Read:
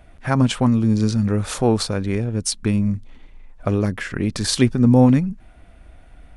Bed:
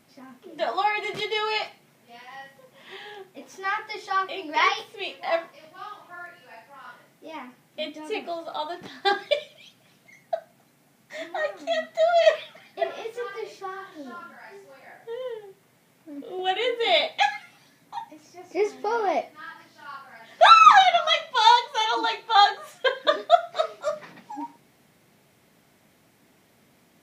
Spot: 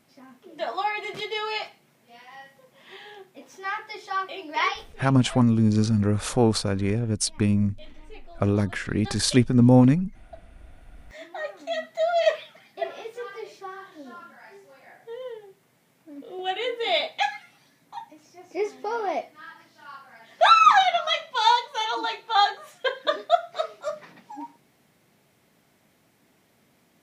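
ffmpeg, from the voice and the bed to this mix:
-filter_complex "[0:a]adelay=4750,volume=0.75[s0];[1:a]volume=3.55,afade=t=out:st=4.63:d=0.52:silence=0.199526,afade=t=in:st=10.49:d=1.29:silence=0.199526[s1];[s0][s1]amix=inputs=2:normalize=0"

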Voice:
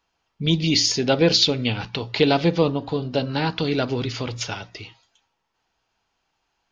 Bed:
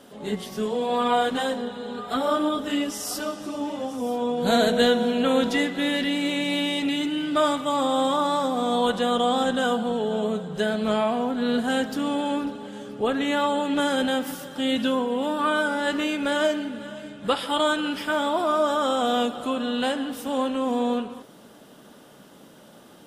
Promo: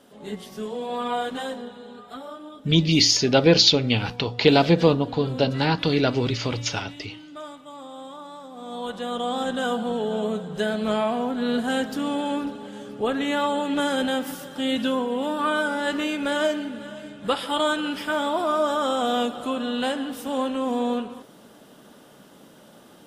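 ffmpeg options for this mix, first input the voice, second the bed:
-filter_complex "[0:a]adelay=2250,volume=1.19[s0];[1:a]volume=3.76,afade=t=out:st=1.53:d=0.84:silence=0.251189,afade=t=in:st=8.49:d=1.46:silence=0.149624[s1];[s0][s1]amix=inputs=2:normalize=0"

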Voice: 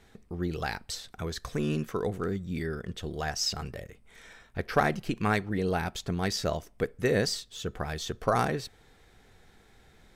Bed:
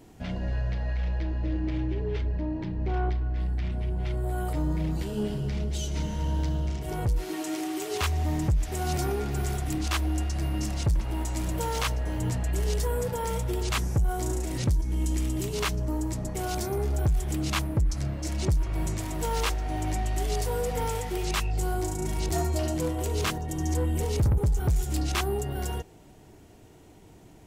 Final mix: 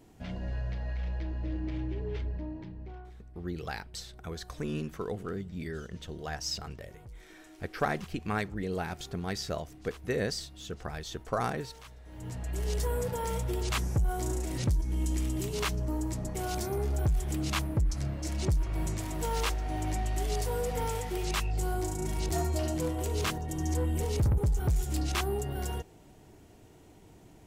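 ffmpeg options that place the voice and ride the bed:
-filter_complex "[0:a]adelay=3050,volume=0.562[s0];[1:a]volume=5.01,afade=t=out:st=2.23:d=0.83:silence=0.141254,afade=t=in:st=12.04:d=0.8:silence=0.105925[s1];[s0][s1]amix=inputs=2:normalize=0"

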